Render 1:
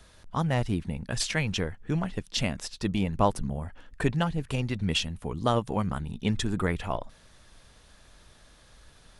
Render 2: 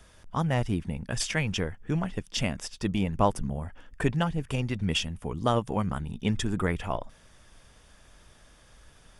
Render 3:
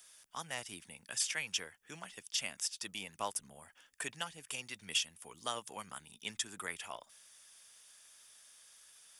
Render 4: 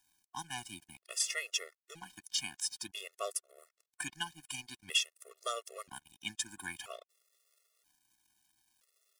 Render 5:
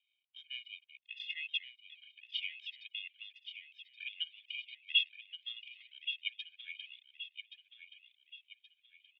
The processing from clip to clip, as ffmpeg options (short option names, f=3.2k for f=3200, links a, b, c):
-af "bandreject=f=4.1k:w=5.5"
-filter_complex "[0:a]aderivative,acrossover=split=170|950|2500[a][b][c][d];[d]alimiter=level_in=3dB:limit=-24dB:level=0:latency=1:release=273,volume=-3dB[e];[a][b][c][e]amix=inputs=4:normalize=0,volume=4.5dB"
-af "aeval=exprs='sgn(val(0))*max(abs(val(0))-0.00168,0)':c=same,afftfilt=real='re*gt(sin(2*PI*0.51*pts/sr)*(1-2*mod(floor(b*sr/1024/360),2)),0)':imag='im*gt(sin(2*PI*0.51*pts/sr)*(1-2*mod(floor(b*sr/1024/360),2)),0)':win_size=1024:overlap=0.75,volume=5dB"
-filter_complex "[0:a]asuperpass=centerf=2800:order=8:qfactor=2.1,asplit=2[a][b];[b]aecho=0:1:1125|2250|3375|4500:0.335|0.137|0.0563|0.0231[c];[a][c]amix=inputs=2:normalize=0,volume=3dB"